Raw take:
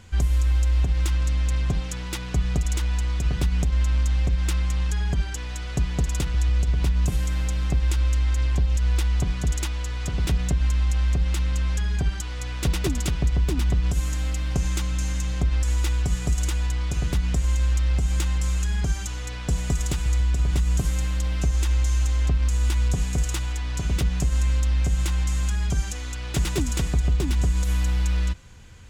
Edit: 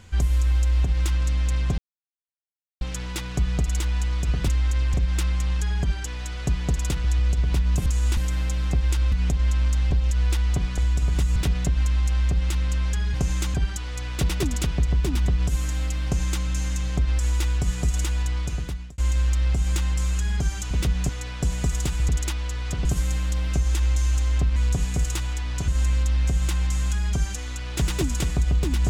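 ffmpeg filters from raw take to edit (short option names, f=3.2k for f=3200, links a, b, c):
-filter_complex "[0:a]asplit=19[a][b][c][d][e][f][g][h][i][j][k][l][m][n][o][p][q][r][s];[a]atrim=end=1.78,asetpts=PTS-STARTPTS,afade=t=out:st=1.776:d=0.004:c=hsin,apad=pad_dur=1.03[t];[b]atrim=start=1.78:end=3.452,asetpts=PTS-STARTPTS,afade=t=in:d=0.004:c=hsin[u];[c]atrim=start=8.108:end=8.572[v];[d]atrim=start=4.238:end=7.162[w];[e]atrim=start=22.438:end=22.752[x];[f]atrim=start=7.158:end=8.112[y];[g]atrim=start=3.448:end=4.242[z];[h]atrim=start=8.568:end=9.442[aa];[i]atrim=start=20.148:end=20.732[ab];[j]atrim=start=10.198:end=11.982[ac];[k]atrim=start=14.488:end=14.892[ad];[l]atrim=start=11.978:end=17.42,asetpts=PTS-STARTPTS,afade=t=out:st=4.832:d=0.61[ae];[m]atrim=start=17.42:end=19.152,asetpts=PTS-STARTPTS,afade=t=in:d=0.004:c=hsin[af];[n]atrim=start=23.868:end=24.252[ag];[o]atrim=start=19.148:end=20.152[ah];[p]atrim=start=9.438:end=10.202[ai];[q]atrim=start=20.728:end=22.442[aj];[r]atrim=start=22.748:end=23.872[ak];[s]atrim=start=24.248[al];[t][u]concat=n=2:v=0:a=1[am];[am][v]acrossfade=d=0.004:c1=hsin:c2=hsin[an];[an][w]acrossfade=d=0.004:c1=hsin:c2=hsin[ao];[ao][x]acrossfade=d=0.004:c1=hsin:c2=hsin[ap];[ap][y]acrossfade=d=0.004:c1=hsin:c2=hsin[aq];[aq][z]acrossfade=d=0.004:c1=hsin:c2=hsin[ar];[ar][aa]acrossfade=d=0.004:c1=hsin:c2=hsin[as];[as][ab]acrossfade=d=0.004:c1=hsin:c2=hsin[at];[at][ac]acrossfade=d=0.004:c1=hsin:c2=hsin[au];[au][ad]acrossfade=d=0.004:c1=hsin:c2=hsin[av];[ae][af]concat=n=2:v=0:a=1[aw];[av][aw]acrossfade=d=0.004:c1=hsin:c2=hsin[ax];[ax][ag]acrossfade=d=0.004:c1=hsin:c2=hsin[ay];[ay][ah]acrossfade=d=0.004:c1=hsin:c2=hsin[az];[az][ai]acrossfade=d=0.004:c1=hsin:c2=hsin[ba];[ba][aj]acrossfade=d=0.004:c1=hsin:c2=hsin[bb];[bb][ak]acrossfade=d=0.004:c1=hsin:c2=hsin[bc];[bc][al]acrossfade=d=0.004:c1=hsin:c2=hsin"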